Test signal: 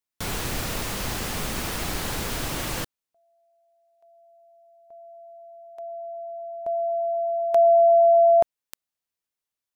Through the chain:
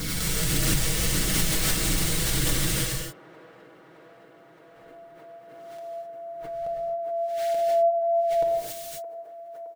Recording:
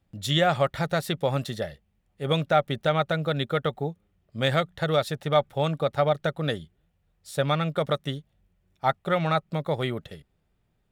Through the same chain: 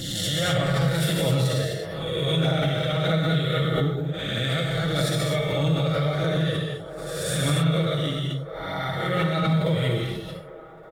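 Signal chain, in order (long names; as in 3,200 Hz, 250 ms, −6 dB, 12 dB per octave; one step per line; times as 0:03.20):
peak hold with a rise ahead of every peak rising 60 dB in 0.68 s
parametric band 860 Hz −12 dB 1.3 octaves
notch filter 2,500 Hz, Q 16
comb filter 6.2 ms, depth 58%
dynamic equaliser 8,500 Hz, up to +5 dB, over −50 dBFS, Q 3.3
in parallel at +1 dB: downward compressor, threshold −34 dBFS
on the sum: brickwall limiter −16 dBFS
flanger 1.6 Hz, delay 0.1 ms, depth 2.1 ms, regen −21%
on a send: delay with a band-pass on its return 617 ms, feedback 76%, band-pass 680 Hz, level −14.5 dB
on the sum: reverb whose tail is shaped and stops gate 290 ms flat, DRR −1.5 dB
background raised ahead of every attack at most 26 dB per second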